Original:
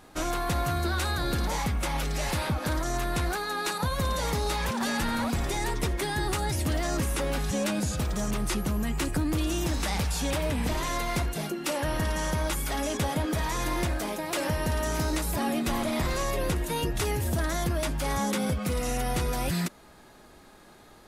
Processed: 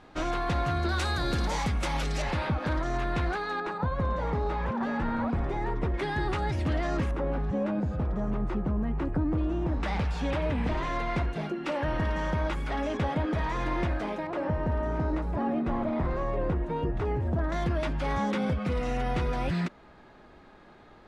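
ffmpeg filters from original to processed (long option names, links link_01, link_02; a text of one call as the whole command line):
ffmpeg -i in.wav -af "asetnsamples=nb_out_samples=441:pad=0,asendcmd='0.89 lowpass f 6400;2.22 lowpass f 2900;3.6 lowpass f 1400;5.94 lowpass f 2700;7.11 lowpass f 1100;9.83 lowpass f 2400;14.27 lowpass f 1200;17.52 lowpass f 2800',lowpass=3700" out.wav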